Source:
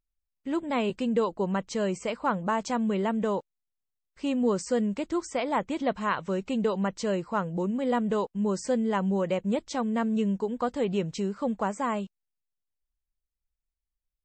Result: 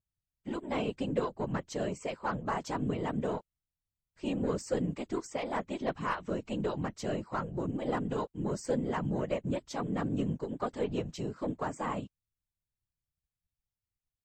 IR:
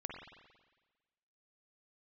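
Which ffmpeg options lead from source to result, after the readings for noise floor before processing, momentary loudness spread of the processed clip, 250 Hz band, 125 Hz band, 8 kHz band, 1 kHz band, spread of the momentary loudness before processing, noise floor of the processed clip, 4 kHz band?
under -85 dBFS, 4 LU, -7.0 dB, -1.5 dB, -6.0 dB, -6.0 dB, 4 LU, under -85 dBFS, -6.0 dB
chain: -af "aeval=exprs='0.2*(cos(1*acos(clip(val(0)/0.2,-1,1)))-cos(1*PI/2))+0.00891*(cos(6*acos(clip(val(0)/0.2,-1,1)))-cos(6*PI/2))':c=same,afftfilt=real='hypot(re,im)*cos(2*PI*random(0))':imag='hypot(re,im)*sin(2*PI*random(1))':win_size=512:overlap=0.75"

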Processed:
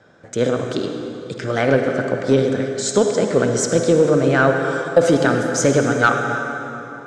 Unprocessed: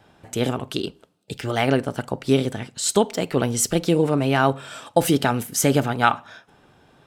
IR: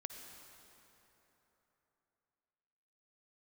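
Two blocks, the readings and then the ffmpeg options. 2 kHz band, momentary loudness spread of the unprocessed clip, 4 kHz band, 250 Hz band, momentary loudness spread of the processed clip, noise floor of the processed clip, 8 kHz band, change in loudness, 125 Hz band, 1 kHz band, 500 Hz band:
+7.0 dB, 10 LU, -1.0 dB, +3.0 dB, 11 LU, -36 dBFS, +0.5 dB, +4.0 dB, +2.0 dB, +1.5 dB, +7.0 dB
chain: -filter_complex "[0:a]highpass=100,equalizer=f=520:t=q:w=4:g=8,equalizer=f=860:t=q:w=4:g=-8,equalizer=f=1.5k:t=q:w=4:g=7,equalizer=f=2.8k:t=q:w=4:g=-10,equalizer=f=4.3k:t=q:w=4:g=-3,equalizer=f=6.8k:t=q:w=4:g=3,lowpass=f=7.1k:w=0.5412,lowpass=f=7.1k:w=1.3066[a];[1:a]atrim=start_sample=2205,asetrate=48510,aresample=44100[b];[a][b]afir=irnorm=-1:irlink=0,acontrast=89"

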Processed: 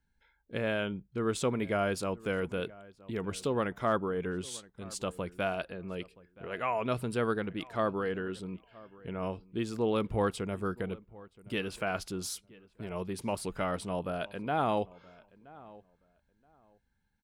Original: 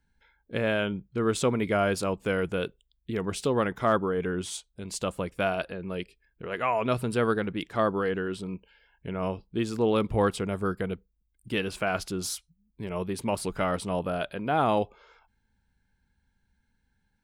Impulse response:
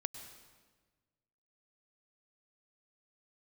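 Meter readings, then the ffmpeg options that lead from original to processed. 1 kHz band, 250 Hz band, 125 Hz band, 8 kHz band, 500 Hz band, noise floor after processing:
-5.0 dB, -5.0 dB, -5.0 dB, -5.0 dB, -5.0 dB, -74 dBFS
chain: -filter_complex "[0:a]asplit=2[a][b];[b]adelay=974,lowpass=f=2k:p=1,volume=-21dB,asplit=2[c][d];[d]adelay=974,lowpass=f=2k:p=1,volume=0.2[e];[a][c][e]amix=inputs=3:normalize=0,volume=-5dB"

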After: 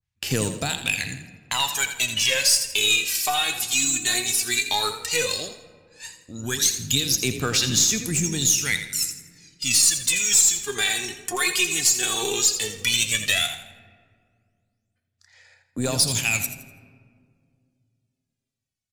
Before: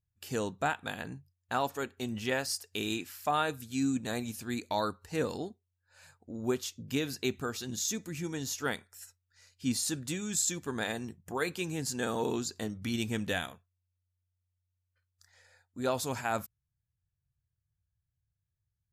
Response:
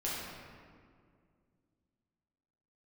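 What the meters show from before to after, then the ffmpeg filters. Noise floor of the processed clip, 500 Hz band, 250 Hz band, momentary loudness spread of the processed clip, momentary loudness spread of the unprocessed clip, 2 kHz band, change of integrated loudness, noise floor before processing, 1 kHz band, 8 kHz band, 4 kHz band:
-80 dBFS, +2.5 dB, +1.5 dB, 12 LU, 8 LU, +13.0 dB, +13.5 dB, -85 dBFS, +4.0 dB, +18.0 dB, +18.0 dB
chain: -filter_complex "[0:a]agate=range=-15dB:threshold=-56dB:ratio=16:detection=peak,tiltshelf=f=820:g=-5,asplit=2[a][b];[b]alimiter=limit=-20dB:level=0:latency=1:release=243,volume=0.5dB[c];[a][c]amix=inputs=2:normalize=0,aphaser=in_gain=1:out_gain=1:delay=2.8:decay=0.78:speed=0.13:type=sinusoidal,adynamicsmooth=sensitivity=7:basefreq=6.9k,aexciter=amount=2.1:drive=7.6:freq=2k,acrossover=split=160[d][e];[e]acompressor=threshold=-29dB:ratio=2.5[f];[d][f]amix=inputs=2:normalize=0,aeval=exprs='0.531*(cos(1*acos(clip(val(0)/0.531,-1,1)))-cos(1*PI/2))+0.015*(cos(8*acos(clip(val(0)/0.531,-1,1)))-cos(8*PI/2))':c=same,asplit=5[g][h][i][j][k];[h]adelay=83,afreqshift=31,volume=-10.5dB[l];[i]adelay=166,afreqshift=62,volume=-19.1dB[m];[j]adelay=249,afreqshift=93,volume=-27.8dB[n];[k]adelay=332,afreqshift=124,volume=-36.4dB[o];[g][l][m][n][o]amix=inputs=5:normalize=0,asplit=2[p][q];[1:a]atrim=start_sample=2205[r];[q][r]afir=irnorm=-1:irlink=0,volume=-17.5dB[s];[p][s]amix=inputs=2:normalize=0,adynamicequalizer=threshold=0.0158:dfrequency=1600:dqfactor=0.7:tfrequency=1600:tqfactor=0.7:attack=5:release=100:ratio=0.375:range=3:mode=boostabove:tftype=highshelf"

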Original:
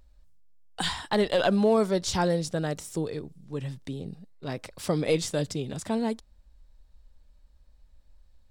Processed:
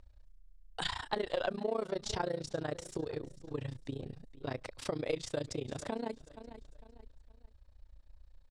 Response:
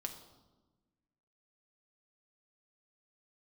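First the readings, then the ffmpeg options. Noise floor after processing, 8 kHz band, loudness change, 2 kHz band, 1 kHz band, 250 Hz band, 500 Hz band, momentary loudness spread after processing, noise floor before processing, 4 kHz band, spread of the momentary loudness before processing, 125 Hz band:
-62 dBFS, -11.0 dB, -10.0 dB, -8.0 dB, -8.0 dB, -13.0 dB, -9.5 dB, 13 LU, -59 dBFS, -8.5 dB, 15 LU, -11.0 dB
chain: -filter_complex "[0:a]lowpass=8.8k,highshelf=f=4.8k:g=-7,asplit=2[a][b];[b]aecho=0:1:462|924|1386:0.112|0.0359|0.0115[c];[a][c]amix=inputs=2:normalize=0,tremolo=f=29:d=0.919,acompressor=threshold=-35dB:ratio=3,equalizer=f=190:t=o:w=0.56:g=-11,volume=3dB"

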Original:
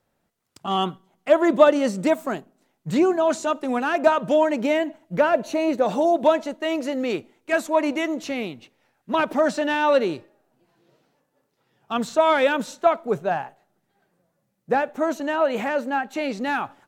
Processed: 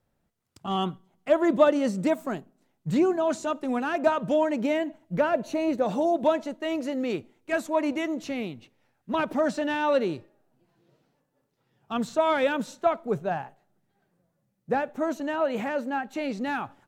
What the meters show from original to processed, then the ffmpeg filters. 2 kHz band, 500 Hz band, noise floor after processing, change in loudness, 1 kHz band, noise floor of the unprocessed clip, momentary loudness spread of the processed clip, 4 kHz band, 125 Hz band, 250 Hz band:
-6.0 dB, -5.0 dB, -75 dBFS, -4.5 dB, -5.5 dB, -73 dBFS, 9 LU, -6.0 dB, -0.5 dB, -2.5 dB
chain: -af "lowshelf=f=190:g=10.5,volume=-6dB"

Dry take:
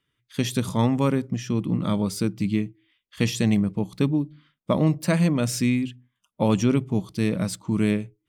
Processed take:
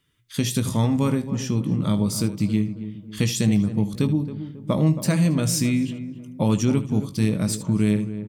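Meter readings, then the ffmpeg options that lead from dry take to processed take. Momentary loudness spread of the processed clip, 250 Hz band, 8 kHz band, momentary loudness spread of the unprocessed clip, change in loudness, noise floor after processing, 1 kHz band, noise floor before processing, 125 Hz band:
8 LU, +1.5 dB, +5.5 dB, 6 LU, +1.5 dB, -42 dBFS, -2.5 dB, -79 dBFS, +3.0 dB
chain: -filter_complex "[0:a]bass=f=250:g=5,treble=f=4k:g=7,asplit=2[a][b];[b]aecho=0:1:19|76:0.316|0.168[c];[a][c]amix=inputs=2:normalize=0,acompressor=threshold=-32dB:ratio=1.5,asplit=2[d][e];[e]adelay=272,lowpass=f=1.1k:p=1,volume=-11dB,asplit=2[f][g];[g]adelay=272,lowpass=f=1.1k:p=1,volume=0.46,asplit=2[h][i];[i]adelay=272,lowpass=f=1.1k:p=1,volume=0.46,asplit=2[j][k];[k]adelay=272,lowpass=f=1.1k:p=1,volume=0.46,asplit=2[l][m];[m]adelay=272,lowpass=f=1.1k:p=1,volume=0.46[n];[f][h][j][l][n]amix=inputs=5:normalize=0[o];[d][o]amix=inputs=2:normalize=0,volume=3.5dB"

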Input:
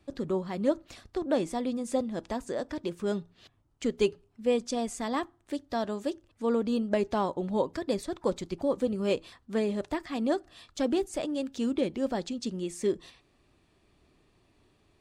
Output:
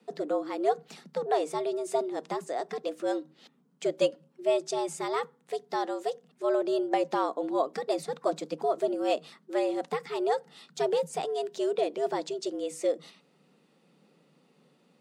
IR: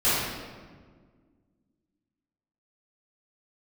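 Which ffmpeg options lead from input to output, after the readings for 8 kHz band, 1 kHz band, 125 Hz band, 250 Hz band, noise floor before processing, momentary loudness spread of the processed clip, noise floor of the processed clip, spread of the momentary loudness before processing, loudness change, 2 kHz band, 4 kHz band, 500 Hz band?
0.0 dB, +5.5 dB, -9.5 dB, -5.0 dB, -68 dBFS, 6 LU, -66 dBFS, 6 LU, +0.5 dB, +0.5 dB, +0.5 dB, +2.0 dB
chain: -af "afreqshift=140,equalizer=f=73:w=1.1:g=14"

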